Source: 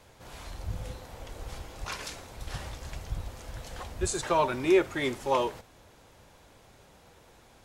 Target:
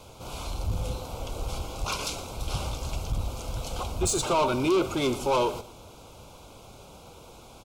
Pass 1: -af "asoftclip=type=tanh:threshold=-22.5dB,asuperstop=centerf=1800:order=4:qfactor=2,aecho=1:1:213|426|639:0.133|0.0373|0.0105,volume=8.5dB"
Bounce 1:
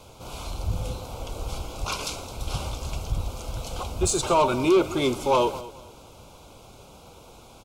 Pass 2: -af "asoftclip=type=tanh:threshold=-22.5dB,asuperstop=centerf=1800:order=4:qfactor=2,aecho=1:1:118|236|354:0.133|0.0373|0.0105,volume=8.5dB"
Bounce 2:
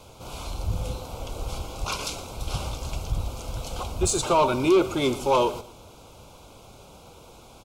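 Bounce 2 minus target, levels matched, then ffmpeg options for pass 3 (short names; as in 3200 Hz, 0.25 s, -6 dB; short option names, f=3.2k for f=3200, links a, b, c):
soft clip: distortion -5 dB
-af "asoftclip=type=tanh:threshold=-28.5dB,asuperstop=centerf=1800:order=4:qfactor=2,aecho=1:1:118|236|354:0.133|0.0373|0.0105,volume=8.5dB"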